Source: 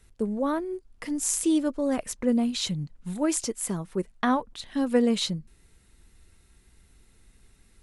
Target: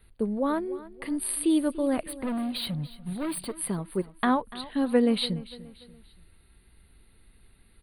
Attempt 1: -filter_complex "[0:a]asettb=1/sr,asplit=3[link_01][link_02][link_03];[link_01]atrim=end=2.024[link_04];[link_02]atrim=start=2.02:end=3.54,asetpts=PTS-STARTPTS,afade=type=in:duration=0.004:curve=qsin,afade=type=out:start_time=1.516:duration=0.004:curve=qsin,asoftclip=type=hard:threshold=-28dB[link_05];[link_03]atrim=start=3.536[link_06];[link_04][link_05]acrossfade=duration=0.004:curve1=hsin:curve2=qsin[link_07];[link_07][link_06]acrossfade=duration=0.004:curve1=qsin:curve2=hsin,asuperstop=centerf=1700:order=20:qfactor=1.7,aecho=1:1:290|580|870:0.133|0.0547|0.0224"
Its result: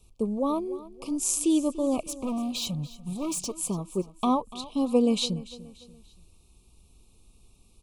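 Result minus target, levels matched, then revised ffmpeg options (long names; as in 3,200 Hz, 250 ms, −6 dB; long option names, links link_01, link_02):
2,000 Hz band −11.5 dB
-filter_complex "[0:a]asettb=1/sr,asplit=3[link_01][link_02][link_03];[link_01]atrim=end=2.024[link_04];[link_02]atrim=start=2.02:end=3.54,asetpts=PTS-STARTPTS,afade=type=in:duration=0.004:curve=qsin,afade=type=out:start_time=1.516:duration=0.004:curve=qsin,asoftclip=type=hard:threshold=-28dB[link_05];[link_03]atrim=start=3.536[link_06];[link_04][link_05]acrossfade=duration=0.004:curve1=hsin:curve2=qsin[link_07];[link_07][link_06]acrossfade=duration=0.004:curve1=qsin:curve2=hsin,asuperstop=centerf=6400:order=20:qfactor=1.7,aecho=1:1:290|580|870:0.133|0.0547|0.0224"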